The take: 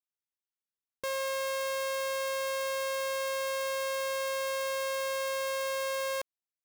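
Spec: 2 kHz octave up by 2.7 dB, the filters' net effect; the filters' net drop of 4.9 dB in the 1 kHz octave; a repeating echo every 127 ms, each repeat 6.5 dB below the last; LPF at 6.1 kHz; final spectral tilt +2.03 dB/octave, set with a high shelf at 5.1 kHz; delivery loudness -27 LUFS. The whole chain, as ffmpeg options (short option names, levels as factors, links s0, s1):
-af "lowpass=6100,equalizer=f=1000:t=o:g=-6.5,equalizer=f=2000:t=o:g=4.5,highshelf=f=5100:g=7,aecho=1:1:127|254|381|508|635|762:0.473|0.222|0.105|0.0491|0.0231|0.0109,volume=1.68"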